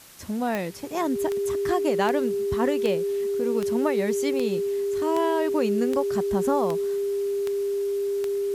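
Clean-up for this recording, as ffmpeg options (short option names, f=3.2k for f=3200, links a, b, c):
-af "adeclick=t=4,bandreject=f=400:w=30,afwtdn=0.004"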